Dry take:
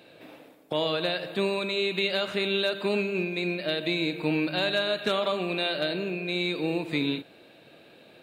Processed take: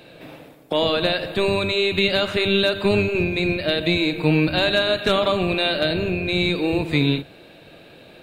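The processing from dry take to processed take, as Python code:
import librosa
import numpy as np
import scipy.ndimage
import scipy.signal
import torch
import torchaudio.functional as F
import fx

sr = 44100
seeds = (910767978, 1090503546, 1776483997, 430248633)

y = fx.octave_divider(x, sr, octaves=1, level_db=-3.0)
y = F.gain(torch.from_numpy(y), 7.0).numpy()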